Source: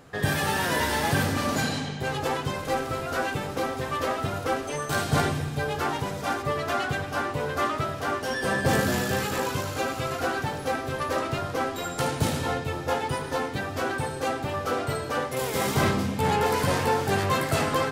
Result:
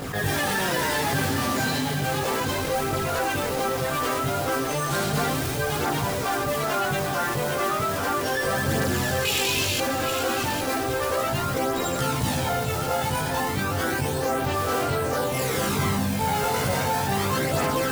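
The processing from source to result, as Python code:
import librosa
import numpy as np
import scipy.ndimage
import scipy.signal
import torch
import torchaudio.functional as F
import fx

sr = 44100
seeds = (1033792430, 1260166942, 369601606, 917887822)

y = fx.high_shelf_res(x, sr, hz=2000.0, db=10.0, q=3.0, at=(9.25, 9.78))
y = fx.mod_noise(y, sr, seeds[0], snr_db=11)
y = fx.chorus_voices(y, sr, voices=2, hz=0.17, base_ms=19, depth_ms=4.0, mix_pct=65)
y = y + 10.0 ** (-12.5 / 20.0) * np.pad(y, (int(807 * sr / 1000.0), 0))[:len(y)]
y = fx.env_flatten(y, sr, amount_pct=70)
y = y * 10.0 ** (-1.5 / 20.0)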